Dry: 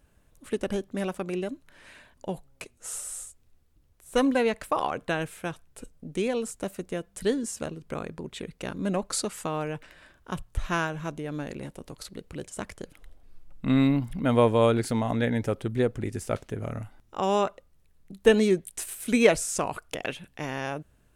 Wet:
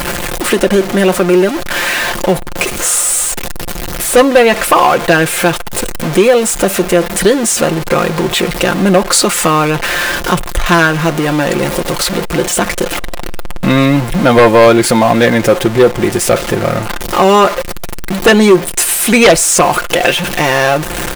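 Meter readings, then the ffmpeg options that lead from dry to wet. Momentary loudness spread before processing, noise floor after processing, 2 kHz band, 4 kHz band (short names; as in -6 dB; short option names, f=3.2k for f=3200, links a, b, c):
17 LU, -21 dBFS, +21.0 dB, +22.0 dB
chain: -filter_complex "[0:a]aeval=exprs='val(0)+0.5*0.0237*sgn(val(0))':c=same,bass=f=250:g=-9,treble=f=4k:g=-3,aecho=1:1:5.7:0.55,asplit=2[a][b];[b]acompressor=threshold=-38dB:ratio=6,volume=1dB[c];[a][c]amix=inputs=2:normalize=0,aeval=exprs='0.473*sin(PI/2*2.51*val(0)/0.473)':c=same,volume=5.5dB"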